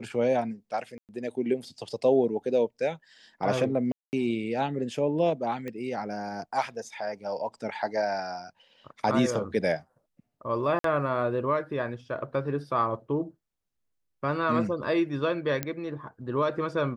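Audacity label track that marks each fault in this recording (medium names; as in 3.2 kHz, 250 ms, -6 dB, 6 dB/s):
0.980000	1.090000	dropout 108 ms
3.920000	4.130000	dropout 209 ms
5.680000	5.680000	pop -23 dBFS
10.790000	10.840000	dropout 53 ms
15.630000	15.630000	pop -13 dBFS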